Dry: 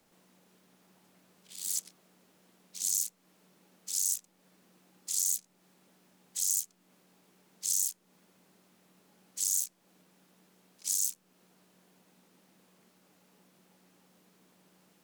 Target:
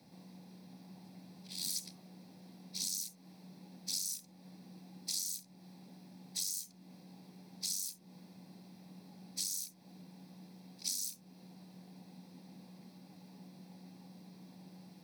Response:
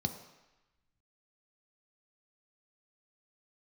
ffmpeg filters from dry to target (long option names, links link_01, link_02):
-filter_complex "[0:a]acompressor=threshold=-33dB:ratio=6[link_01];[1:a]atrim=start_sample=2205,atrim=end_sample=3087[link_02];[link_01][link_02]afir=irnorm=-1:irlink=0"